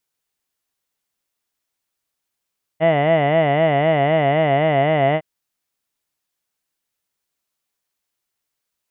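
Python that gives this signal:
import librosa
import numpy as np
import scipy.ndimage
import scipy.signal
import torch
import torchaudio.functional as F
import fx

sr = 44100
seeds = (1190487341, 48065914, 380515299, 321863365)

y = fx.formant_vowel(sr, seeds[0], length_s=2.41, hz=154.0, glide_st=-1.0, vibrato_hz=3.9, vibrato_st=1.4, f1_hz=670.0, f2_hz=2000.0, f3_hz=2900.0)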